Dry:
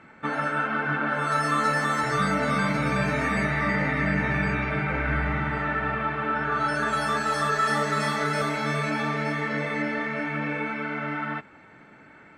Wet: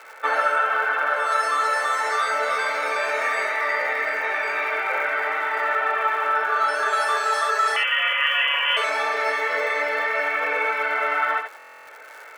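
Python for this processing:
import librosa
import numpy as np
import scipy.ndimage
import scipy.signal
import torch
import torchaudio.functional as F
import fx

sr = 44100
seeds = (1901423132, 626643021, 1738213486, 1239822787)

y = fx.rider(x, sr, range_db=10, speed_s=0.5)
y = fx.freq_invert(y, sr, carrier_hz=3200, at=(7.76, 8.77))
y = y + 10.0 ** (-7.0 / 20.0) * np.pad(y, (int(72 * sr / 1000.0), 0))[:len(y)]
y = fx.dmg_crackle(y, sr, seeds[0], per_s=260.0, level_db=-40.0)
y = scipy.signal.sosfilt(scipy.signal.cheby1(4, 1.0, 460.0, 'highpass', fs=sr, output='sos'), y)
y = fx.buffer_glitch(y, sr, at_s=(11.57,), block=1024, repeats=12)
y = F.gain(torch.from_numpy(y), 4.5).numpy()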